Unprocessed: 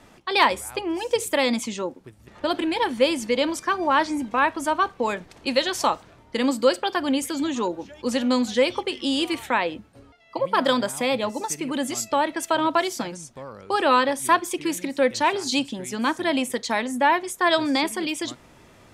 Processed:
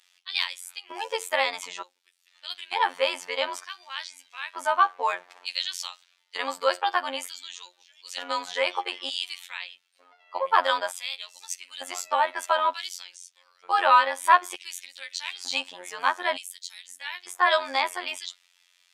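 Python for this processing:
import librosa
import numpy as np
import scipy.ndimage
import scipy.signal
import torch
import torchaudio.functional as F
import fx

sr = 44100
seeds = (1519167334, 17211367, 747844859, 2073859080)

y = fx.pre_emphasis(x, sr, coefficient=0.9, at=(16.37, 16.87), fade=0.02)
y = fx.filter_lfo_highpass(y, sr, shape='square', hz=0.55, low_hz=830.0, high_hz=3700.0, q=1.2)
y = fx.bass_treble(y, sr, bass_db=-9, treble_db=-7)
y = fx.robotise(y, sr, hz=89.5)
y = y * 10.0 ** (2.0 / 20.0)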